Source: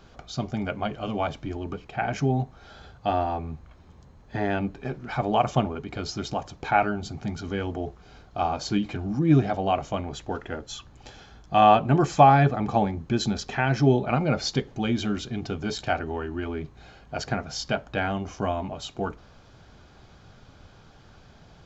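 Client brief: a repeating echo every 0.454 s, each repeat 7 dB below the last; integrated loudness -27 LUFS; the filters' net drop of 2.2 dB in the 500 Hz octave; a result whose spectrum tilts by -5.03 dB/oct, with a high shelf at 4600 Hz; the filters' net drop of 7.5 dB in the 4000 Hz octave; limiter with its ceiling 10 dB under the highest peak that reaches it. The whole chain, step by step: bell 500 Hz -3 dB; bell 4000 Hz -6.5 dB; high shelf 4600 Hz -6.5 dB; limiter -14.5 dBFS; feedback echo 0.454 s, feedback 45%, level -7 dB; gain +1.5 dB

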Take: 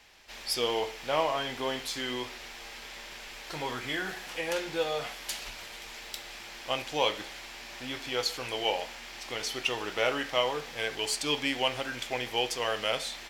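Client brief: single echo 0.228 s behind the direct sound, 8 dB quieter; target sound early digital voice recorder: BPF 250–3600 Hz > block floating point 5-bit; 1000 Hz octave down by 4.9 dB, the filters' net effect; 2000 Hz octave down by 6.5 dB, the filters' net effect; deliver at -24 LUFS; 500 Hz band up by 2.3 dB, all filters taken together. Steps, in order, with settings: BPF 250–3600 Hz; bell 500 Hz +5 dB; bell 1000 Hz -7 dB; bell 2000 Hz -6 dB; echo 0.228 s -8 dB; block floating point 5-bit; gain +8.5 dB

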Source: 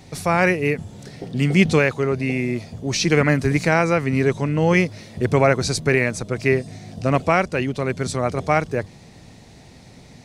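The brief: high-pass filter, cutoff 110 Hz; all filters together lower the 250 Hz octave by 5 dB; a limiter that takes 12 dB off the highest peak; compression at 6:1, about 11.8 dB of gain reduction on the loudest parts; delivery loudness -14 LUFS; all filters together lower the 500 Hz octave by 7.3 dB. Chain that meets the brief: HPF 110 Hz; bell 250 Hz -4.5 dB; bell 500 Hz -8 dB; compressor 6:1, threshold -27 dBFS; gain +23 dB; limiter -3 dBFS

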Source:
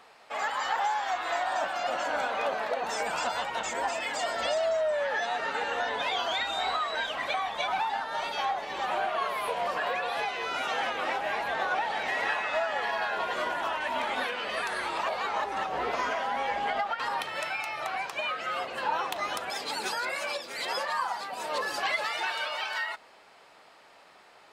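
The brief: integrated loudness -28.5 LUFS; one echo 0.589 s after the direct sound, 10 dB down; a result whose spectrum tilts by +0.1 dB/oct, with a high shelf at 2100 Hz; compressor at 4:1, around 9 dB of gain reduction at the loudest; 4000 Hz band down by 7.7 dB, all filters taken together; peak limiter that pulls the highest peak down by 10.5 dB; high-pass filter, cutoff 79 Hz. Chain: HPF 79 Hz; high shelf 2100 Hz -6.5 dB; bell 4000 Hz -4 dB; compressor 4:1, threshold -37 dBFS; limiter -36 dBFS; echo 0.589 s -10 dB; gain +15 dB

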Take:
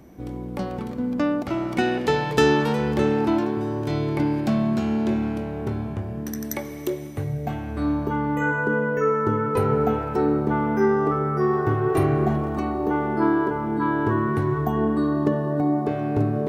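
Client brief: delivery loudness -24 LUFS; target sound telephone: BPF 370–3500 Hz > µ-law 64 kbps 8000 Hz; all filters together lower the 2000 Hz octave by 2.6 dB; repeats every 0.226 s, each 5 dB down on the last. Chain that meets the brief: BPF 370–3500 Hz; bell 2000 Hz -3.5 dB; feedback echo 0.226 s, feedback 56%, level -5 dB; gain +2 dB; µ-law 64 kbps 8000 Hz

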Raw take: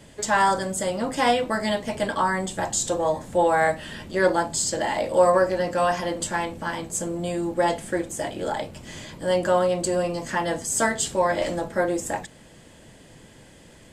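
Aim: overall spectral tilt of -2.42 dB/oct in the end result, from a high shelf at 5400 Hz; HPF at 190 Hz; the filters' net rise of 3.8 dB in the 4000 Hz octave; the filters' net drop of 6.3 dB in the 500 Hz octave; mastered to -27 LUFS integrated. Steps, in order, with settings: HPF 190 Hz; bell 500 Hz -7.5 dB; bell 4000 Hz +7.5 dB; high shelf 5400 Hz -5.5 dB

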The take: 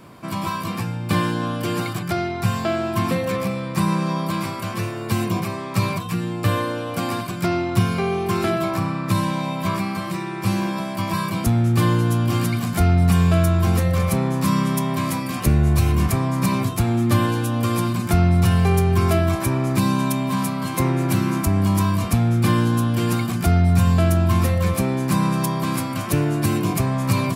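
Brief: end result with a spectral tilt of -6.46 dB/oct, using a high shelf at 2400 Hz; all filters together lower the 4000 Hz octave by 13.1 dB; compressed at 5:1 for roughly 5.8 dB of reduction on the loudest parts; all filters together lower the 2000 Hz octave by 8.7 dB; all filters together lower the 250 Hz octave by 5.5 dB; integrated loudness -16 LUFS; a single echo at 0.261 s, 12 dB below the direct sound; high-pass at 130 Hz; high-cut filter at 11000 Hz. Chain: HPF 130 Hz; LPF 11000 Hz; bell 250 Hz -7 dB; bell 2000 Hz -5.5 dB; high shelf 2400 Hz -7.5 dB; bell 4000 Hz -8.5 dB; compressor 5:1, threshold -25 dBFS; echo 0.261 s -12 dB; gain +13.5 dB

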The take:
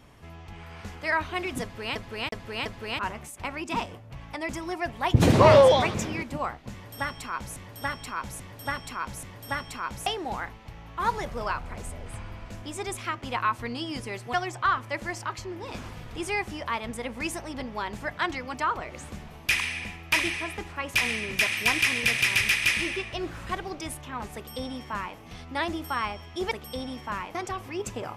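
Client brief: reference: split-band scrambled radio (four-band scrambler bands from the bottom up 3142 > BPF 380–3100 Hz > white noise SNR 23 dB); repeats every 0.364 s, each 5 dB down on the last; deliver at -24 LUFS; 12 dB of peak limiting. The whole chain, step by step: limiter -18.5 dBFS; feedback echo 0.364 s, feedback 56%, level -5 dB; four-band scrambler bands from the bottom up 3142; BPF 380–3100 Hz; white noise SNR 23 dB; gain +6.5 dB

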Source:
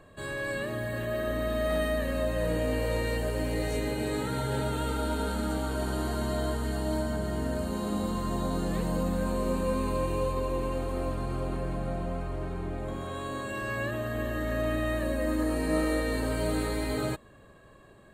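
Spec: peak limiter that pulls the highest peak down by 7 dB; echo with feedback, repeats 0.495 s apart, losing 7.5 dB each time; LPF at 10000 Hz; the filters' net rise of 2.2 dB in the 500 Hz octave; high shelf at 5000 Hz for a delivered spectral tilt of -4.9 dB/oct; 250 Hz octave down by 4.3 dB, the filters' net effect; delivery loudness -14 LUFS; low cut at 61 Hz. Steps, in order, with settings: HPF 61 Hz; LPF 10000 Hz; bell 250 Hz -7 dB; bell 500 Hz +4 dB; high shelf 5000 Hz +6.5 dB; limiter -23.5 dBFS; feedback echo 0.495 s, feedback 42%, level -7.5 dB; gain +18 dB

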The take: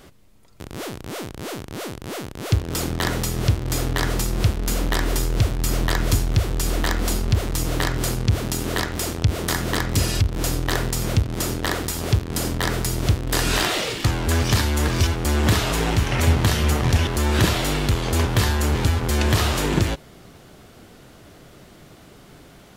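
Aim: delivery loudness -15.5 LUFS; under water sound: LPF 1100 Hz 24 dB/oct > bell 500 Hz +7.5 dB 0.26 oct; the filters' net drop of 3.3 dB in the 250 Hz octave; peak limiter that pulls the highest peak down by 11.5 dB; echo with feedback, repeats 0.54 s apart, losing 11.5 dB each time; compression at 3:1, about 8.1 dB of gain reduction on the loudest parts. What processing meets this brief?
bell 250 Hz -5 dB; compressor 3:1, threshold -25 dBFS; limiter -22.5 dBFS; LPF 1100 Hz 24 dB/oct; bell 500 Hz +7.5 dB 0.26 oct; feedback echo 0.54 s, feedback 27%, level -11.5 dB; gain +18.5 dB

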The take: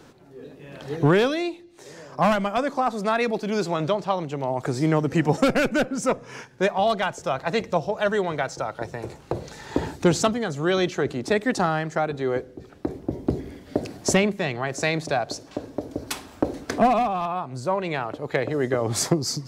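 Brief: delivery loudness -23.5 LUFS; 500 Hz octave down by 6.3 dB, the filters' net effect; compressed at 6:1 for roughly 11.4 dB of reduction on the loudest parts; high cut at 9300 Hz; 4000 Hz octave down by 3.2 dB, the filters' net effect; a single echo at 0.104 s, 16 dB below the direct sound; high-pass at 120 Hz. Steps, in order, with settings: HPF 120 Hz; LPF 9300 Hz; bell 500 Hz -8.5 dB; bell 4000 Hz -4 dB; compressor 6:1, threshold -30 dBFS; echo 0.104 s -16 dB; gain +12 dB

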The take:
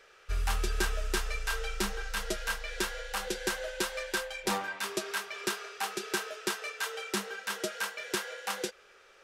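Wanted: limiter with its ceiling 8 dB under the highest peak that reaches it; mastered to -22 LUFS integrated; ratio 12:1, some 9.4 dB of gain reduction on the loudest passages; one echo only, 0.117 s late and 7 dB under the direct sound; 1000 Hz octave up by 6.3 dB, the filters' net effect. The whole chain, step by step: bell 1000 Hz +8 dB; compressor 12:1, threshold -33 dBFS; limiter -28 dBFS; echo 0.117 s -7 dB; gain +17 dB

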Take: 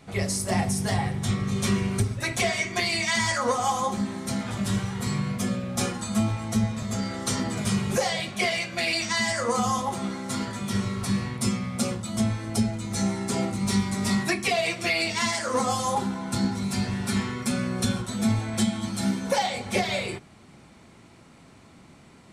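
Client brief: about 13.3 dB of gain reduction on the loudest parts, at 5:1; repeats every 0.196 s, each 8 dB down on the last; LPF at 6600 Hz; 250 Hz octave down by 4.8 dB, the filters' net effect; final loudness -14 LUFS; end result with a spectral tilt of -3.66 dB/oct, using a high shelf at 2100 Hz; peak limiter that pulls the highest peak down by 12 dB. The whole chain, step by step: LPF 6600 Hz; bell 250 Hz -6.5 dB; high shelf 2100 Hz +7 dB; compressor 5:1, threshold -34 dBFS; limiter -31 dBFS; feedback echo 0.196 s, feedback 40%, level -8 dB; gain +24.5 dB

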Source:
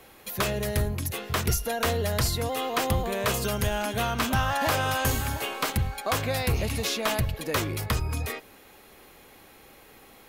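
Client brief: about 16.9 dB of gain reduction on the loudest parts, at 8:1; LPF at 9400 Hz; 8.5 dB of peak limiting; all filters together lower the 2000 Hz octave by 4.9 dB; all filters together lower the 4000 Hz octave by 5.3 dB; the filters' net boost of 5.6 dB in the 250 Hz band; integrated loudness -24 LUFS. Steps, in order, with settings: LPF 9400 Hz; bell 250 Hz +7 dB; bell 2000 Hz -5.5 dB; bell 4000 Hz -5 dB; compressor 8:1, threshold -37 dBFS; gain +19.5 dB; limiter -14 dBFS

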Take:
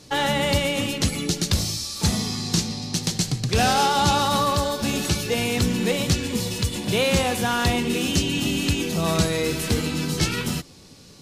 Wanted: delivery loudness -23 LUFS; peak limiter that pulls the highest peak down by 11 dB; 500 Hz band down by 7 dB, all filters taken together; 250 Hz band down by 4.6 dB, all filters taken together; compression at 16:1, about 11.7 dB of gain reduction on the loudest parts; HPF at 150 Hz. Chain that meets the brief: HPF 150 Hz; bell 250 Hz -3 dB; bell 500 Hz -7.5 dB; compressor 16:1, threshold -30 dBFS; gain +12.5 dB; limiter -14 dBFS

